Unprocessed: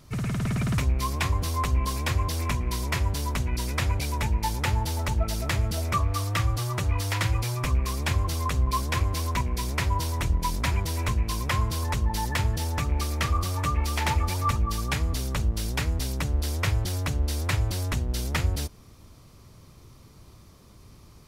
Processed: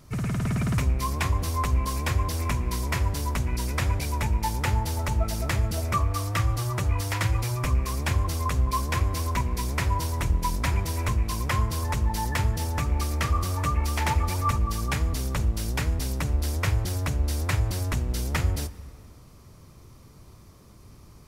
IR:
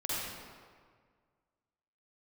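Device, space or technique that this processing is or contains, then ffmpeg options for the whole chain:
compressed reverb return: -filter_complex "[0:a]asplit=2[link_01][link_02];[1:a]atrim=start_sample=2205[link_03];[link_02][link_03]afir=irnorm=-1:irlink=0,acompressor=threshold=-18dB:ratio=6,volume=-18dB[link_04];[link_01][link_04]amix=inputs=2:normalize=0,equalizer=frequency=3600:width_type=o:width=1:gain=-4"

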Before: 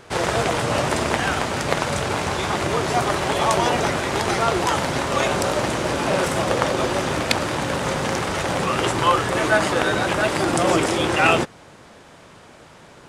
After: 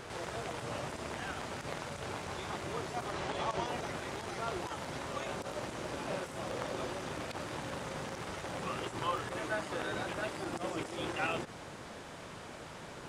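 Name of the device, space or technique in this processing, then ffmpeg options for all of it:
de-esser from a sidechain: -filter_complex "[0:a]asettb=1/sr,asplit=3[link_01][link_02][link_03];[link_01]atrim=end=3.124[link_04];[link_02]atrim=start=3.12:end=3.66,asetpts=PTS-STARTPTS,afade=type=in:duration=0.004:curve=qsin,afade=type=out:start_time=0.536:duration=0.004:curve=qsin,lowpass=7400[link_05];[link_03]atrim=start=3.656[link_06];[link_04][link_05]acrossfade=duration=0.004:curve1=hsin:curve2=qsin[link_07];[link_07][link_06]acrossfade=duration=0.004:curve1=qsin:curve2=hsin,asplit=2[link_08][link_09];[link_09]highpass=frequency=6400:width=0.5412,highpass=frequency=6400:width=1.3066,apad=whole_len=576998[link_10];[link_08][link_10]sidechaincompress=threshold=-58dB:ratio=4:attack=1.2:release=36"

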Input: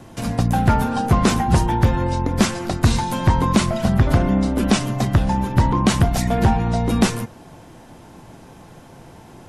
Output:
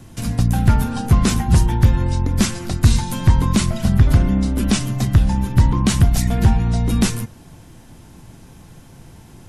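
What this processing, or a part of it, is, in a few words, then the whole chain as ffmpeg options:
smiley-face EQ: -af "lowshelf=frequency=120:gain=8.5,equalizer=frequency=670:width_type=o:width=2:gain=-7,highshelf=frequency=6500:gain=6.5,volume=-1dB"

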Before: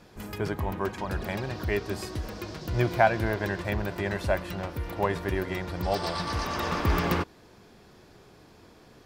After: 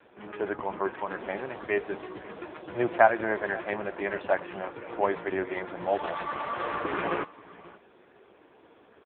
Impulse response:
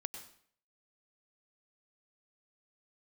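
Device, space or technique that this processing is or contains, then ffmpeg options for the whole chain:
satellite phone: -af "highpass=320,lowpass=3000,aecho=1:1:532:0.1,volume=3.5dB" -ar 8000 -c:a libopencore_amrnb -b:a 5150

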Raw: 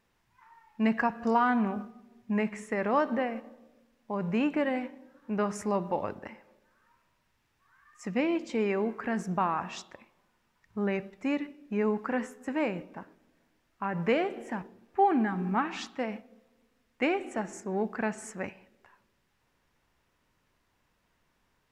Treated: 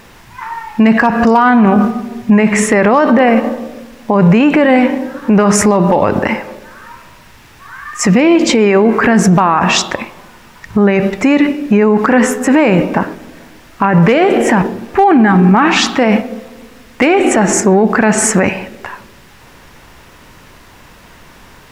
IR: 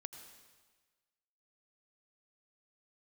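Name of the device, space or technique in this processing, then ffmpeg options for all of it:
loud club master: -af "acompressor=threshold=-31dB:ratio=2.5,asoftclip=type=hard:threshold=-23.5dB,alimiter=level_in=34dB:limit=-1dB:release=50:level=0:latency=1,volume=-1dB"

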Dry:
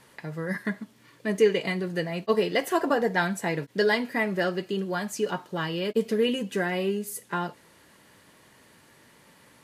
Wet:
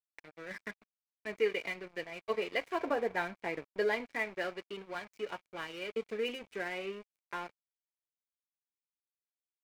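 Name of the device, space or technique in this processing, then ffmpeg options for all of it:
pocket radio on a weak battery: -filter_complex "[0:a]asettb=1/sr,asplit=3[link_01][link_02][link_03];[link_01]atrim=end=2.794[link_04];[link_02]atrim=start=2.79:end=4.06,asetpts=PTS-STARTPTS,afade=type=in:duration=0.004:curve=qsin,afade=type=out:start_time=1.266:duration=0.004:curve=qsin,tiltshelf=frequency=1100:gain=4[link_05];[link_03]atrim=start=4.056[link_06];[link_04][link_05]acrossfade=duration=0.004:curve1=hsin:curve2=qsin[link_07];[link_07][link_06]acrossfade=duration=0.004:curve1=qsin:curve2=hsin,highpass=350,lowpass=4000,aeval=exprs='sgn(val(0))*max(abs(val(0))-0.01,0)':channel_layout=same,equalizer=frequency=2300:width_type=o:width=0.21:gain=12,volume=-8dB"

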